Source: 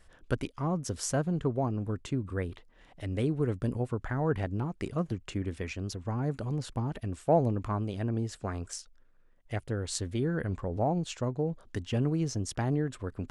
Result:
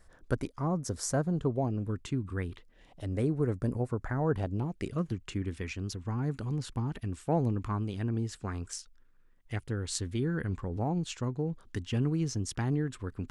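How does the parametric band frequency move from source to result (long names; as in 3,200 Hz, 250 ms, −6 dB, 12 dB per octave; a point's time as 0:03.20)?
parametric band −10 dB 0.64 octaves
0:01.25 2,900 Hz
0:02.00 570 Hz
0:02.50 570 Hz
0:03.18 3,100 Hz
0:04.18 3,100 Hz
0:05.10 610 Hz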